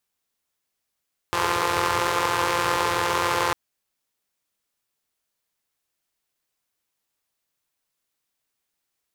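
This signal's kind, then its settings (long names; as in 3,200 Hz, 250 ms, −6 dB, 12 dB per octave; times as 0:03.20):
pulse-train model of a four-cylinder engine, steady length 2.20 s, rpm 5,200, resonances 110/460/960 Hz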